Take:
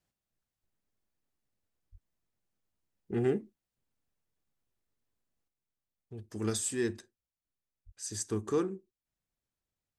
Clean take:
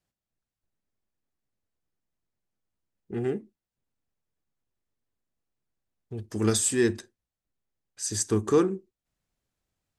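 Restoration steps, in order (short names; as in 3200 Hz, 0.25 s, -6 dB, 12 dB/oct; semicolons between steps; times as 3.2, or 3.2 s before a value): 1.91–2.03 HPF 140 Hz 24 dB/oct; 5.48 gain correction +8.5 dB; 7.85–7.97 HPF 140 Hz 24 dB/oct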